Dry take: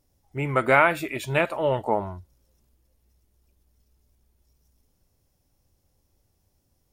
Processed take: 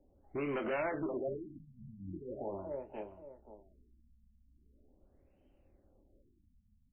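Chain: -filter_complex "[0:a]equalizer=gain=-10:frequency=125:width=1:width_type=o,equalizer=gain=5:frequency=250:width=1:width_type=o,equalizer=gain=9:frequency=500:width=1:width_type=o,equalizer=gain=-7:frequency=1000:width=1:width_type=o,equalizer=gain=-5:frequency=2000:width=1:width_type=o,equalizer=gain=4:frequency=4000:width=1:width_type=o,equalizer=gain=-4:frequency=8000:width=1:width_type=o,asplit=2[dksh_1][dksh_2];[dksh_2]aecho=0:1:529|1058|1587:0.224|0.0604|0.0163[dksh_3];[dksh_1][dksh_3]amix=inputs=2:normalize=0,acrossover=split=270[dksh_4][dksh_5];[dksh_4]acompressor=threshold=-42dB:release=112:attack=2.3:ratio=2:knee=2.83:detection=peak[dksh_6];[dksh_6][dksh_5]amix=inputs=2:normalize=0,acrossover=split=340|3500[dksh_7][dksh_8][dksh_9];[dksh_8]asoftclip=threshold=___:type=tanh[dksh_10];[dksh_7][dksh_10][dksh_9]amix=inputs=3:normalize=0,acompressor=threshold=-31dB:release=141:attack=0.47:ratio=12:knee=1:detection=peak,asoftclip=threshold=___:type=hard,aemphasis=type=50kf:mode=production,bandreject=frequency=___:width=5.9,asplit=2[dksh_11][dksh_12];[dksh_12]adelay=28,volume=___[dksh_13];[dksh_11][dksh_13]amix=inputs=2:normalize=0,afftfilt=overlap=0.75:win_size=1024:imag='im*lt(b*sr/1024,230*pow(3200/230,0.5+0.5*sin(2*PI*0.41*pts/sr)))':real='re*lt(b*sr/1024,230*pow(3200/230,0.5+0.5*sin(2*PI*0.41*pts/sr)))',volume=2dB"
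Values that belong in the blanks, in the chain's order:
-21.5dB, -34.5dB, 470, -9dB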